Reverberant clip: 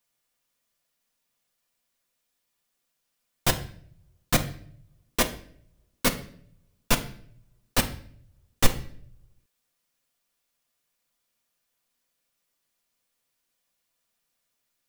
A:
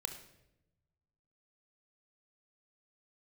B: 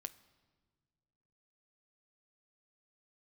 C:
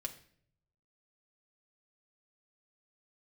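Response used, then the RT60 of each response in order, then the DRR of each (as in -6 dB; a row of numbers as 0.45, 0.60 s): C; 0.90 s, not exponential, 0.55 s; 5.5, 12.5, 2.5 dB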